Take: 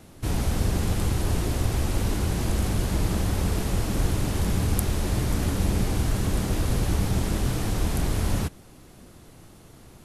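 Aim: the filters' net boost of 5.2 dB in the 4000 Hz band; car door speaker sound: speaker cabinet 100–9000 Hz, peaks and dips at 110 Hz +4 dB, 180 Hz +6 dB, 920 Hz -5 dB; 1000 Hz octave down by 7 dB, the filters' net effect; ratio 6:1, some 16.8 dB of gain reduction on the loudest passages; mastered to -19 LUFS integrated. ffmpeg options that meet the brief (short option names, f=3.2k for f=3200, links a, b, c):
-af "equalizer=f=1k:t=o:g=-7.5,equalizer=f=4k:t=o:g=7,acompressor=threshold=-38dB:ratio=6,highpass=100,equalizer=f=110:t=q:w=4:g=4,equalizer=f=180:t=q:w=4:g=6,equalizer=f=920:t=q:w=4:g=-5,lowpass=f=9k:w=0.5412,lowpass=f=9k:w=1.3066,volume=23.5dB"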